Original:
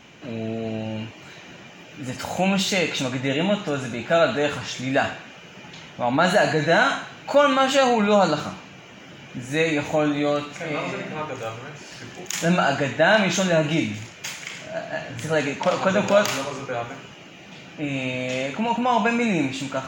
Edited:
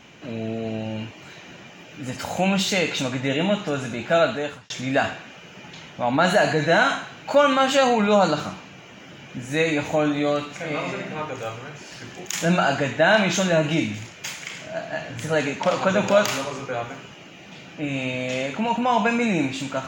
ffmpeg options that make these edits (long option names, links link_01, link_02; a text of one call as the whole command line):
ffmpeg -i in.wav -filter_complex "[0:a]asplit=2[link_01][link_02];[link_01]atrim=end=4.7,asetpts=PTS-STARTPTS,afade=type=out:start_time=4.2:duration=0.5[link_03];[link_02]atrim=start=4.7,asetpts=PTS-STARTPTS,afade=type=in:duration=0.004:curve=hsin[link_04];[link_03][link_04]concat=n=2:v=0:a=1" out.wav